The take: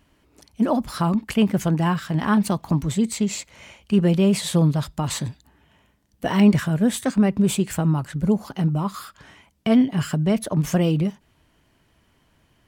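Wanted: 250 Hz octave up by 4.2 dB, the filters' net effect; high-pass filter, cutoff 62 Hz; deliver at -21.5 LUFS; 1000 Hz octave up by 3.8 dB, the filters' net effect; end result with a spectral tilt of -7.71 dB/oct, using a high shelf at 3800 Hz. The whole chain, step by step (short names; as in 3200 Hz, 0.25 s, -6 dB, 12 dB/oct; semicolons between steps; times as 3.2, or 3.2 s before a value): HPF 62 Hz; bell 250 Hz +5.5 dB; bell 1000 Hz +5 dB; high shelf 3800 Hz -9 dB; gain -3.5 dB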